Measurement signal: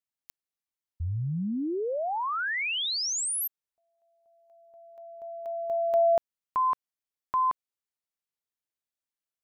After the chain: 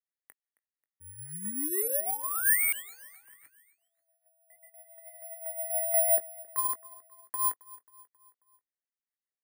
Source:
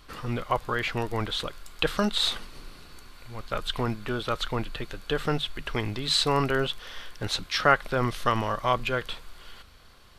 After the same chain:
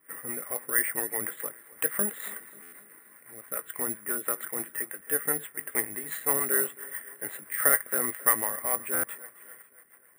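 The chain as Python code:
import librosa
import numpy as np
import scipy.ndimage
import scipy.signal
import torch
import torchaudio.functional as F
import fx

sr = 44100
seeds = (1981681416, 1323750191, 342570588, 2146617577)

p1 = scipy.signal.sosfilt(scipy.signal.butter(2, 340.0, 'highpass', fs=sr, output='sos'), x)
p2 = fx.tilt_shelf(p1, sr, db=5.5, hz=870.0)
p3 = fx.harmonic_tremolo(p2, sr, hz=7.4, depth_pct=50, crossover_hz=440.0)
p4 = fx.quant_companded(p3, sr, bits=4)
p5 = p3 + (p4 * 10.0 ** (-9.0 / 20.0))
p6 = fx.ladder_lowpass(p5, sr, hz=2000.0, resonance_pct=80)
p7 = fx.rotary(p6, sr, hz=6.0)
p8 = fx.doubler(p7, sr, ms=20.0, db=-13)
p9 = fx.echo_feedback(p8, sr, ms=269, feedback_pct=51, wet_db=-21.0)
p10 = (np.kron(p9[::4], np.eye(4)[0]) * 4)[:len(p9)]
p11 = fx.buffer_glitch(p10, sr, at_s=(2.62, 8.93), block=512, repeats=8)
y = p11 * 10.0 ** (5.5 / 20.0)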